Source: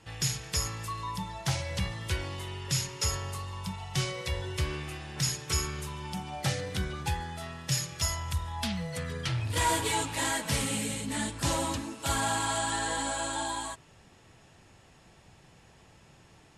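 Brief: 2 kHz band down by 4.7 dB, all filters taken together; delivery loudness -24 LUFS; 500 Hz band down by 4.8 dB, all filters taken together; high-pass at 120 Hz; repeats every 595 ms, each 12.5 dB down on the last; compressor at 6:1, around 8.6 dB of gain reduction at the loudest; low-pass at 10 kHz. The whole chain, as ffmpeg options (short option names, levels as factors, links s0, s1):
-af "highpass=120,lowpass=10000,equalizer=f=500:t=o:g=-6,equalizer=f=2000:t=o:g=-5.5,acompressor=threshold=0.0158:ratio=6,aecho=1:1:595|1190|1785:0.237|0.0569|0.0137,volume=5.96"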